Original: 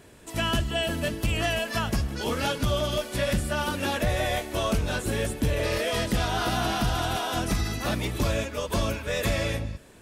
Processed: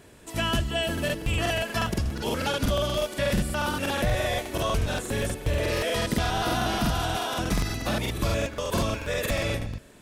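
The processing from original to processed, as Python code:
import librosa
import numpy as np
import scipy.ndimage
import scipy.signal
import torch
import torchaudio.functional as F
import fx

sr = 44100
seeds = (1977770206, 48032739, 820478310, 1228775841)

y = fx.buffer_crackle(x, sr, first_s=0.93, period_s=0.12, block=2048, kind='repeat')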